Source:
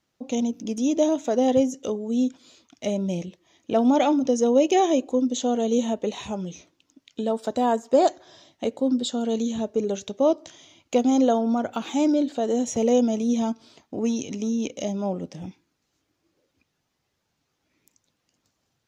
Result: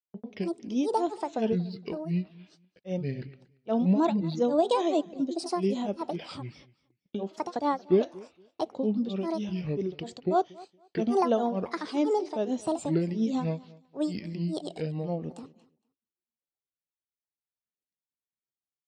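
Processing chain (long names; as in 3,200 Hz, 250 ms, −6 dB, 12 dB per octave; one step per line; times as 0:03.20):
noise gate −47 dBFS, range −29 dB
low-pass filter 5,300 Hz 24 dB per octave
granular cloud 235 ms, grains 7.4 per second, pitch spread up and down by 7 semitones
repeating echo 232 ms, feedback 19%, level −22 dB
level −3.5 dB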